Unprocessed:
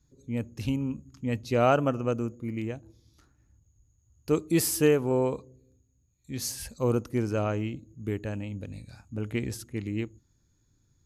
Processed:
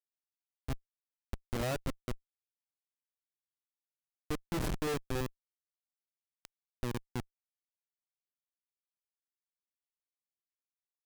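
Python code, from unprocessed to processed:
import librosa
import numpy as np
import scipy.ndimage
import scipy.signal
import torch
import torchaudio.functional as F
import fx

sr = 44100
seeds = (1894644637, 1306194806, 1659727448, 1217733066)

y = fx.bin_expand(x, sr, power=1.5)
y = fx.schmitt(y, sr, flips_db=-22.5)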